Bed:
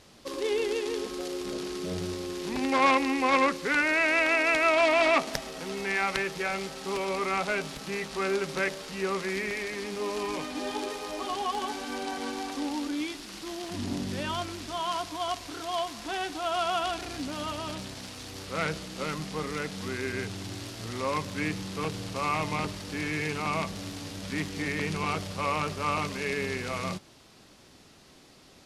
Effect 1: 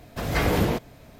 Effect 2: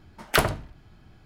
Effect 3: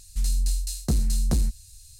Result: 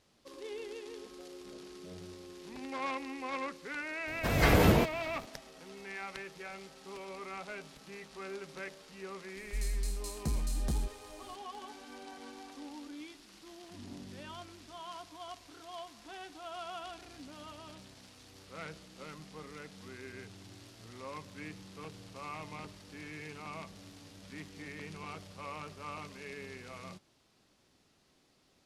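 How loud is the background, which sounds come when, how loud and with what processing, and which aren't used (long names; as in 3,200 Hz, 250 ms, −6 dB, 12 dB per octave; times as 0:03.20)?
bed −14.5 dB
0:04.07: mix in 1 −1.5 dB
0:09.37: mix in 3 −10.5 dB
not used: 2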